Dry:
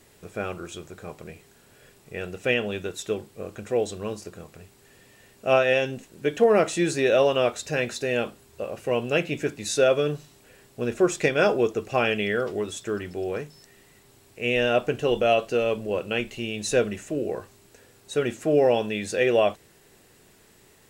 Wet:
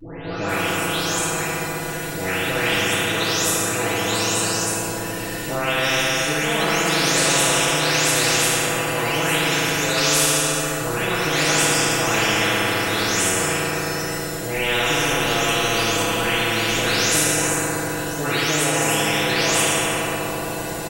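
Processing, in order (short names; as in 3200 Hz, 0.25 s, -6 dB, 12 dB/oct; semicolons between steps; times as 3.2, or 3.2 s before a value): spectral delay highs late, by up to 0.485 s; comb 6.1 ms, depth 84%; limiter -14 dBFS, peak gain reduction 7.5 dB; FDN reverb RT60 2.6 s, low-frequency decay 1.4×, high-frequency decay 0.45×, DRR -7 dB; spectral compressor 4:1; gain -3.5 dB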